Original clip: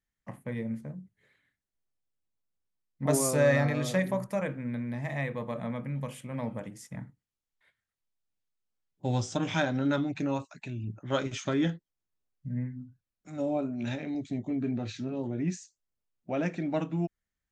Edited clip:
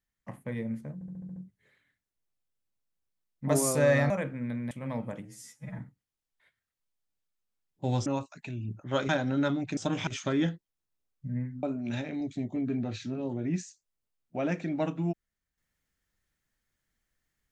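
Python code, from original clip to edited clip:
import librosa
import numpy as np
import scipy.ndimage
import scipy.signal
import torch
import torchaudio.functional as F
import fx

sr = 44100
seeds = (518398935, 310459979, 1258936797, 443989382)

y = fx.edit(x, sr, fx.stutter(start_s=0.94, slice_s=0.07, count=7),
    fx.cut(start_s=3.68, length_s=0.66),
    fx.cut(start_s=4.95, length_s=1.24),
    fx.stretch_span(start_s=6.73, length_s=0.27, factor=2.0),
    fx.swap(start_s=9.27, length_s=0.3, other_s=10.25, other_length_s=1.03),
    fx.cut(start_s=12.84, length_s=0.73), tone=tone)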